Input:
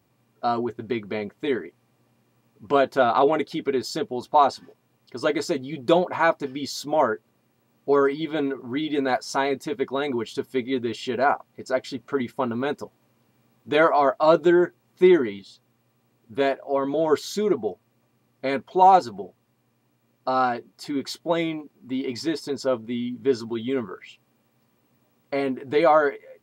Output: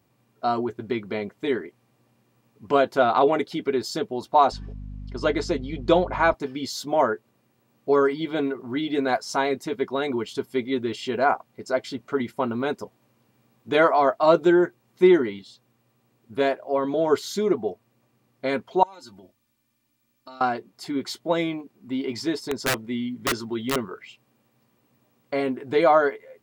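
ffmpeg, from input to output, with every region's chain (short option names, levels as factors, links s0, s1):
-filter_complex "[0:a]asettb=1/sr,asplit=3[s0][s1][s2];[s0]atrim=end=4.524[s3];[s1]atrim=start=4.52:end=6.34,asetpts=PTS-STARTPTS,afade=t=in:d=0.004:c=qsin,afade=t=out:st=1.816:d=0.004:c=qsin,lowpass=6400,aeval=exprs='val(0)+0.0178*(sin(2*PI*50*n/s)+sin(2*PI*2*50*n/s)/2+sin(2*PI*3*50*n/s)/3+sin(2*PI*4*50*n/s)/4+sin(2*PI*5*50*n/s)/5)':c=same[s4];[s2]atrim=start=6.336[s5];[s3][s4]acrossfade=d=0.004:c1=hsin:c2=qsin[s6];[s6][s5]acrossfade=d=0.004:c1=qsin:c2=hsin,asettb=1/sr,asplit=3[s7][s8][s9];[s7]atrim=end=18.834[s10];[s8]atrim=start=18.83:end=20.41,asetpts=PTS-STARTPTS,afade=t=in:d=0.004:c=qsin,afade=t=out:st=1.576:d=0.004:c=qsin,equalizer=f=510:w=0.35:g=-14,acompressor=threshold=0.00794:ratio=6:attack=3.2:release=140:knee=1:detection=peak,aecho=1:1:3.4:0.91,atrim=end_sample=69678[s11];[s9]atrim=start=20.406[s12];[s10][s11]acrossfade=d=0.004:c1=hsin:c2=qsin[s13];[s13][s12]acrossfade=d=0.004:c1=qsin:c2=hsin,asettb=1/sr,asplit=3[s14][s15][s16];[s14]atrim=end=22.434[s17];[s15]atrim=start=22.43:end=23.76,asetpts=PTS-STARTPTS,afade=t=in:d=0.004:c=qsin,afade=t=out:st=1.326:d=0.004:c=qsin,equalizer=f=1900:w=5.7:g=5,aeval=exprs='(mod(7.5*val(0)+1,2)-1)/7.5':c=same[s18];[s16]atrim=start=23.756[s19];[s17][s18]acrossfade=d=0.004:c1=hsin:c2=qsin[s20];[s20][s19]acrossfade=d=0.004:c1=qsin:c2=hsin"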